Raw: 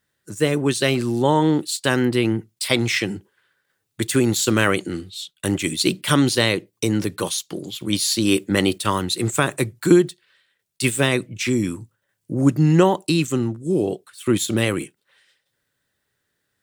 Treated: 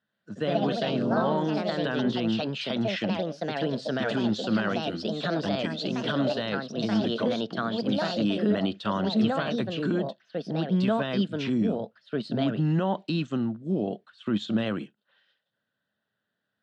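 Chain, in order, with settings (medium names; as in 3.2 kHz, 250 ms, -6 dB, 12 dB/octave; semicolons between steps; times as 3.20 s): ever faster or slower copies 126 ms, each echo +3 st, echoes 3; peak limiter -10.5 dBFS, peak gain reduction 10.5 dB; cabinet simulation 120–4100 Hz, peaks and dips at 210 Hz +10 dB, 370 Hz -5 dB, 660 Hz +8 dB, 1.5 kHz +5 dB, 2.2 kHz -10 dB, 3.1 kHz +3 dB; trim -7.5 dB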